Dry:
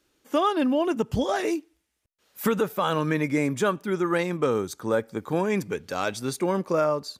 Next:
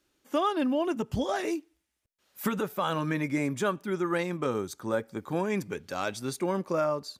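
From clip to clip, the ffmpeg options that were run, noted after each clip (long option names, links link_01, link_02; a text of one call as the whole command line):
ffmpeg -i in.wav -af "bandreject=frequency=460:width=12,volume=-4dB" out.wav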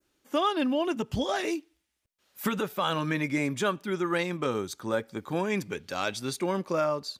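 ffmpeg -i in.wav -af "adynamicequalizer=threshold=0.00355:dfrequency=3400:dqfactor=0.84:tfrequency=3400:tqfactor=0.84:attack=5:release=100:ratio=0.375:range=3:mode=boostabove:tftype=bell" out.wav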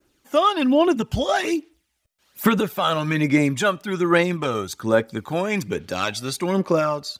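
ffmpeg -i in.wav -af "aphaser=in_gain=1:out_gain=1:delay=1.6:decay=0.46:speed=1.2:type=sinusoidal,volume=6dB" out.wav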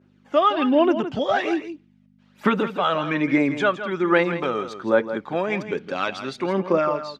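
ffmpeg -i in.wav -af "aeval=exprs='val(0)+0.00562*(sin(2*PI*50*n/s)+sin(2*PI*2*50*n/s)/2+sin(2*PI*3*50*n/s)/3+sin(2*PI*4*50*n/s)/4+sin(2*PI*5*50*n/s)/5)':channel_layout=same,highpass=220,lowpass=2900,aecho=1:1:165:0.282" out.wav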